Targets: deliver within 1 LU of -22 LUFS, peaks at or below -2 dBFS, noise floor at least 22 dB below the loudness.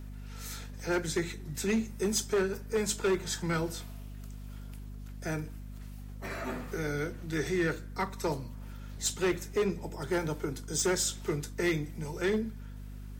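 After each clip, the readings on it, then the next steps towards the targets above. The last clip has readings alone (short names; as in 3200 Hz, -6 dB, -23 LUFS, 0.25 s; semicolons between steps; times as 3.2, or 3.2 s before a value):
clipped 1.3%; flat tops at -23.0 dBFS; hum 50 Hz; harmonics up to 250 Hz; hum level -41 dBFS; loudness -32.5 LUFS; peak -23.0 dBFS; loudness target -22.0 LUFS
-> clip repair -23 dBFS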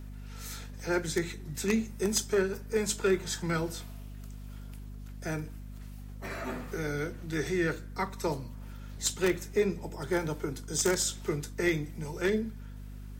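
clipped 0.0%; hum 50 Hz; harmonics up to 250 Hz; hum level -40 dBFS
-> notches 50/100/150/200/250 Hz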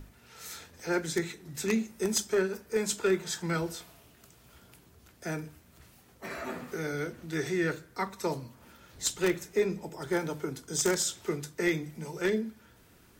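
hum none; loudness -32.0 LUFS; peak -13.5 dBFS; loudness target -22.0 LUFS
-> gain +10 dB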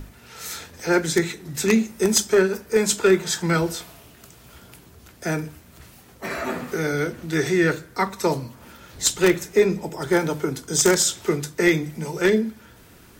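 loudness -22.0 LUFS; peak -3.5 dBFS; noise floor -49 dBFS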